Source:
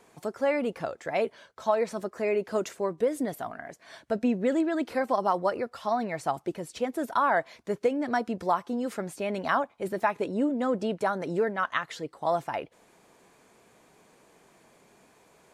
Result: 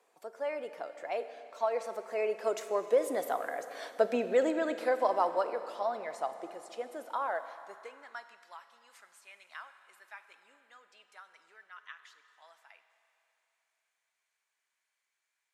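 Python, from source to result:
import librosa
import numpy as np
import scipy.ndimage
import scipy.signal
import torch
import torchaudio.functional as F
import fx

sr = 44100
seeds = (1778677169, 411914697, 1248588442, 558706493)

y = fx.doppler_pass(x, sr, speed_mps=12, closest_m=9.2, pass_at_s=3.78)
y = fx.rev_schroeder(y, sr, rt60_s=3.1, comb_ms=33, drr_db=10.0)
y = fx.filter_sweep_highpass(y, sr, from_hz=510.0, to_hz=1800.0, start_s=7.28, end_s=8.47, q=1.2)
y = y * librosa.db_to_amplitude(2.0)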